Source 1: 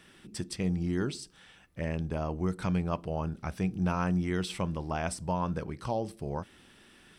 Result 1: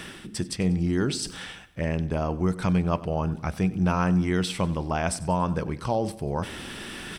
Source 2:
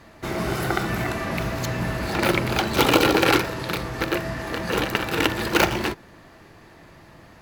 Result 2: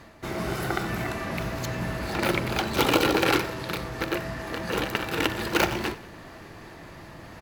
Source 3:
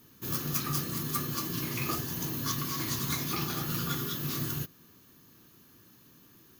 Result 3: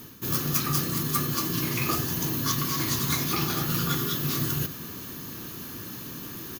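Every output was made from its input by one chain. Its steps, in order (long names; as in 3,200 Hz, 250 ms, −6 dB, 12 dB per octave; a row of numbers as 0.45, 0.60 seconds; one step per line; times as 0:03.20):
reversed playback
upward compression, threshold −30 dBFS
reversed playback
repeating echo 94 ms, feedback 47%, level −18.5 dB
loudness normalisation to −27 LKFS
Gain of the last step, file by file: +6.0, −4.0, +5.5 decibels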